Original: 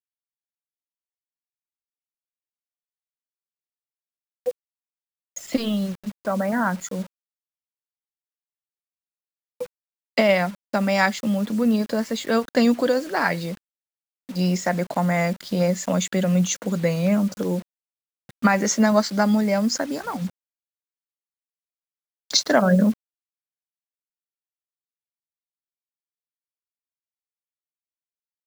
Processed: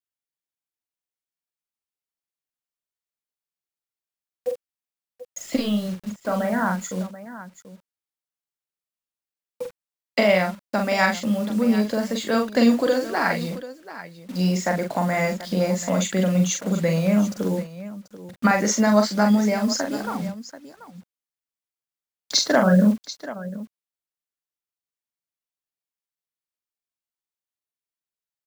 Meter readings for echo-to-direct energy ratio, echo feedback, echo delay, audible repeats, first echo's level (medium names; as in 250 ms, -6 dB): -4.5 dB, no regular repeats, 43 ms, 2, -5.0 dB